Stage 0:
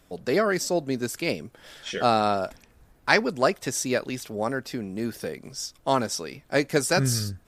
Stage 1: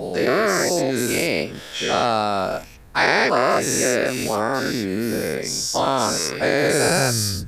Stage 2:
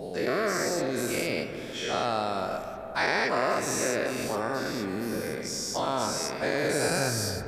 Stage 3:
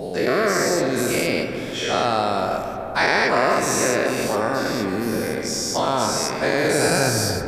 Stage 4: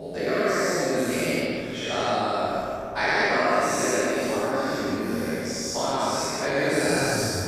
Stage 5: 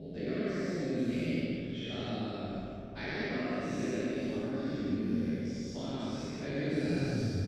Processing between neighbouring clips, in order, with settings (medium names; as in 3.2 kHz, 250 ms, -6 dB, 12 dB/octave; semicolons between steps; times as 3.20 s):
every event in the spectrogram widened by 240 ms; compression 2:1, threshold -23 dBFS, peak gain reduction 8.5 dB; trim +3.5 dB
on a send at -7.5 dB: low-pass 2.8 kHz 12 dB/octave + reverberation RT60 3.7 s, pre-delay 95 ms; on the sum: trim -9 dB
filtered feedback delay 143 ms, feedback 79%, low-pass 2.2 kHz, level -11 dB; trim +7.5 dB
treble shelf 8.2 kHz -5 dB; gated-style reverb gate 220 ms flat, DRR -3 dB; trim -8.5 dB
FFT filter 240 Hz 0 dB, 970 Hz -21 dB, 3.3 kHz -7 dB, 9.6 kHz -28 dB; delay 196 ms -13 dB; trim -2.5 dB